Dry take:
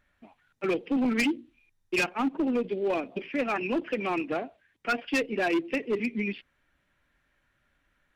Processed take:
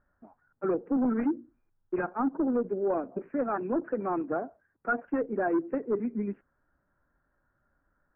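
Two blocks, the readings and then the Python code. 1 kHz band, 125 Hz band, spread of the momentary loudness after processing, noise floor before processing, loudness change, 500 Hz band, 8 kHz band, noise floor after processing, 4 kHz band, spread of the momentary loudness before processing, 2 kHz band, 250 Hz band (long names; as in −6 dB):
−0.5 dB, −1.0 dB, 8 LU, −73 dBFS, −1.5 dB, 0.0 dB, below −30 dB, −76 dBFS, below −40 dB, 7 LU, −8.5 dB, −0.5 dB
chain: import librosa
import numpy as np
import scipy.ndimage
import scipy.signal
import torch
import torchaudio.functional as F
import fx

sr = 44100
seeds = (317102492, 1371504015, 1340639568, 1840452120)

y = scipy.signal.sosfilt(scipy.signal.ellip(4, 1.0, 60, 1500.0, 'lowpass', fs=sr, output='sos'), x)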